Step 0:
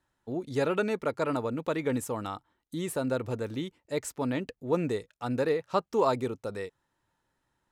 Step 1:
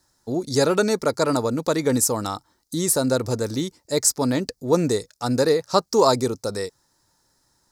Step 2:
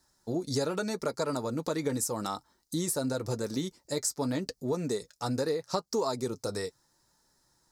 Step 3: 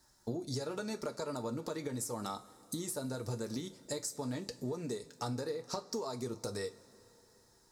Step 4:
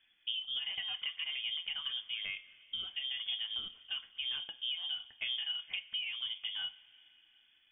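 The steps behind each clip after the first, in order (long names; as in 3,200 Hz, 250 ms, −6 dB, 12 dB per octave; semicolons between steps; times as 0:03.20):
high shelf with overshoot 3,800 Hz +9.5 dB, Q 3; level +8.5 dB
downward compressor 5 to 1, threshold −24 dBFS, peak gain reduction 11 dB; flanger 0.83 Hz, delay 4.4 ms, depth 2.7 ms, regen −50%
downward compressor 6 to 1, threshold −38 dBFS, peak gain reduction 13 dB; coupled-rooms reverb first 0.24 s, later 3.4 s, from −21 dB, DRR 7.5 dB; level +1.5 dB
voice inversion scrambler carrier 3,400 Hz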